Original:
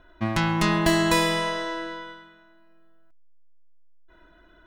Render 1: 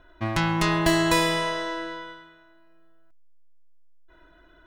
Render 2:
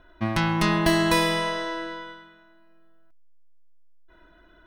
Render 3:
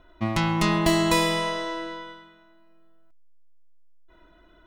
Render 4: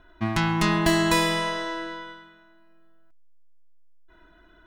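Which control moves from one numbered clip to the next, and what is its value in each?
notch filter, centre frequency: 210, 7,200, 1,600, 550 Hertz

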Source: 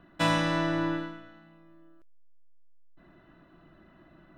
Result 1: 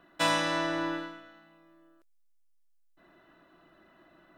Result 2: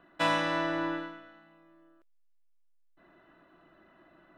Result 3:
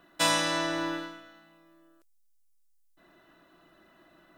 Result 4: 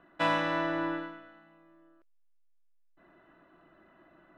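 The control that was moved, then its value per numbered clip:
bass and treble, treble: +5, −6, +14, −15 decibels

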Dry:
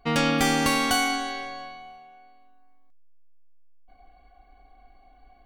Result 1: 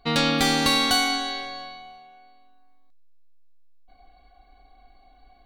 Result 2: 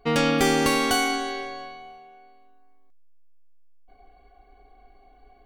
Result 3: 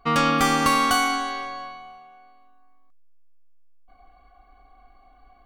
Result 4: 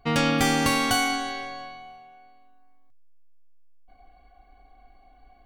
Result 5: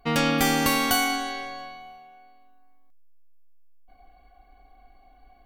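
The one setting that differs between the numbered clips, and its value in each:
parametric band, centre frequency: 4,000, 410, 1,200, 110, 14,000 Hertz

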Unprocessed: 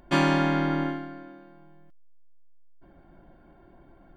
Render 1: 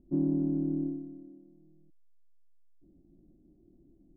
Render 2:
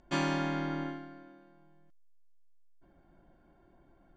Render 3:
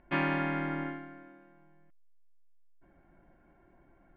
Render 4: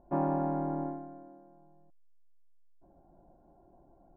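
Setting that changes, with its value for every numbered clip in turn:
transistor ladder low-pass, frequency: 360, 7,900, 2,700, 920 Hertz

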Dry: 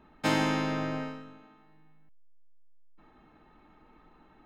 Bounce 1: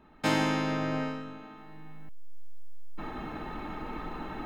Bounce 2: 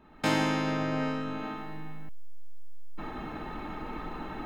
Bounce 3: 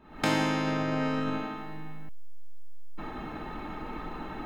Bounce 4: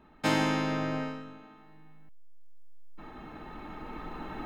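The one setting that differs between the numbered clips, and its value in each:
camcorder AGC, rising by: 13, 34, 87, 5.5 dB per second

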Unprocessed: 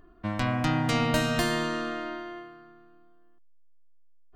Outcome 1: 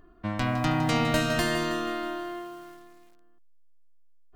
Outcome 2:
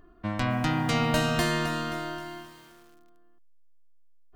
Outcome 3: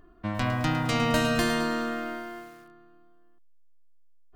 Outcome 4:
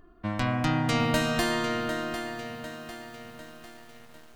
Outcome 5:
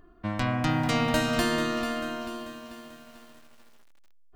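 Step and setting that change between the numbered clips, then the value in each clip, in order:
feedback echo at a low word length, delay time: 160, 264, 107, 750, 441 milliseconds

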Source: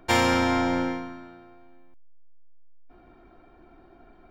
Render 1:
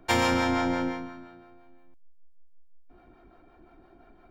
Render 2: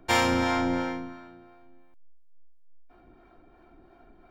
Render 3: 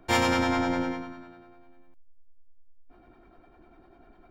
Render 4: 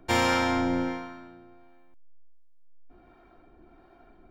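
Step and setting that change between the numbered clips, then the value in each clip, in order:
two-band tremolo in antiphase, speed: 5.8, 2.9, 10, 1.4 Hertz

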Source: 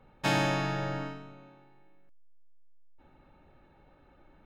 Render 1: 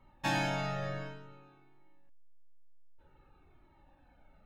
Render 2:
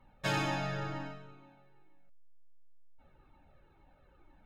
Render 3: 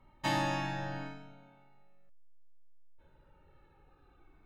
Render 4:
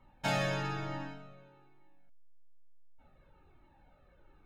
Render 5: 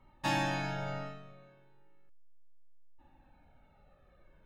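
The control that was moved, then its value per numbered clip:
flanger whose copies keep moving one way, speed: 0.54, 2.1, 0.2, 1.1, 0.36 Hertz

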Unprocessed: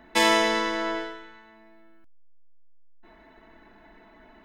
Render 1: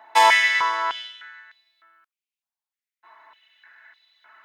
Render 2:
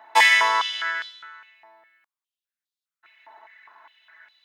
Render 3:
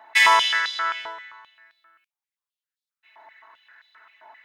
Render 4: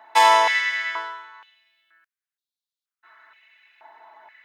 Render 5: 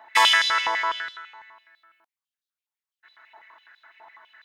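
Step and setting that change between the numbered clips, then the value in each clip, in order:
high-pass on a step sequencer, speed: 3.3, 4.9, 7.6, 2.1, 12 Hertz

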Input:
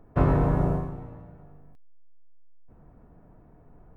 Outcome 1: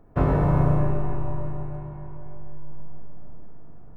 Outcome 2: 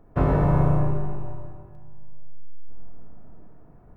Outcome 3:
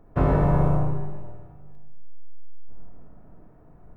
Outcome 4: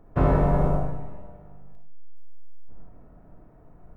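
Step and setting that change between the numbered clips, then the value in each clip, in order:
comb and all-pass reverb, RT60: 4.9, 2.2, 1.1, 0.42 seconds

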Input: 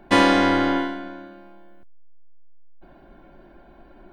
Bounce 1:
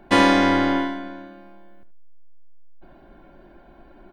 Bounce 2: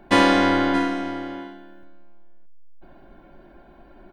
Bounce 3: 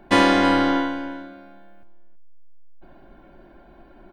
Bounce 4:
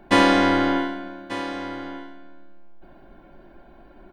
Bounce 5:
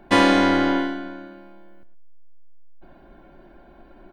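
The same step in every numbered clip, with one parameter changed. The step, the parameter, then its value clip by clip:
single-tap delay, delay time: 76, 626, 324, 1,189, 112 milliseconds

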